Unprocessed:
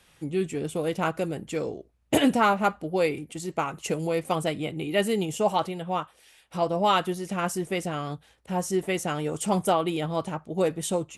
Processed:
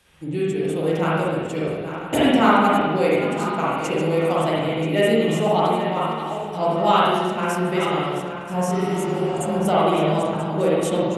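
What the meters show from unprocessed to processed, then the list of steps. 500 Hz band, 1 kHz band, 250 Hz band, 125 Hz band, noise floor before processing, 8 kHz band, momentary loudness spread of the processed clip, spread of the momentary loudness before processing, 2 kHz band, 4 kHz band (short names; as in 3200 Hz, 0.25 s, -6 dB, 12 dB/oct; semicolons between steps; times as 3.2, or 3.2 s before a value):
+7.0 dB, +6.5 dB, +6.5 dB, +7.0 dB, -61 dBFS, -0.5 dB, 8 LU, 9 LU, +6.0 dB, +5.0 dB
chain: regenerating reverse delay 0.491 s, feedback 57%, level -10 dB; spectral repair 8.77–9.54, 230–6100 Hz both; spring tank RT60 1.3 s, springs 44/57 ms, chirp 45 ms, DRR -6 dB; gain -1 dB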